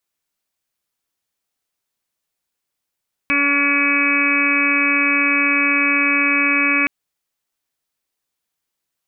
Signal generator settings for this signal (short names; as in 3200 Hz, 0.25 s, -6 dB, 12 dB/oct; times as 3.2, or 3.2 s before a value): steady additive tone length 3.57 s, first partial 284 Hz, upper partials -10.5/-20/-3/-5.5/-2/-9/5/2 dB, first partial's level -22 dB